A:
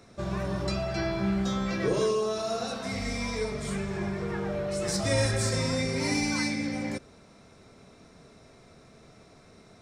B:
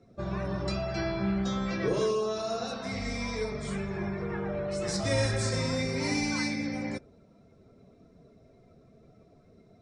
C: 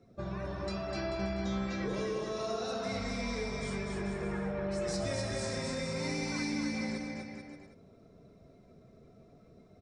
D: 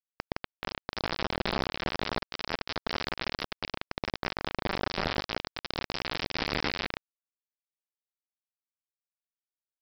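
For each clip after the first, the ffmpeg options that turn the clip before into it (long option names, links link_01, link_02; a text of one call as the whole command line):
ffmpeg -i in.wav -af "afftdn=noise_reduction=15:noise_floor=-51,lowpass=7800,volume=-1.5dB" out.wav
ffmpeg -i in.wav -filter_complex "[0:a]acompressor=threshold=-31dB:ratio=6,asplit=2[link_01][link_02];[link_02]aecho=0:1:250|437.5|578.1|683.6|762.7:0.631|0.398|0.251|0.158|0.1[link_03];[link_01][link_03]amix=inputs=2:normalize=0,volume=-2.5dB" out.wav
ffmpeg -i in.wav -af "tremolo=f=170:d=0.667,aresample=11025,acrusher=bits=4:mix=0:aa=0.000001,aresample=44100,volume=7dB" out.wav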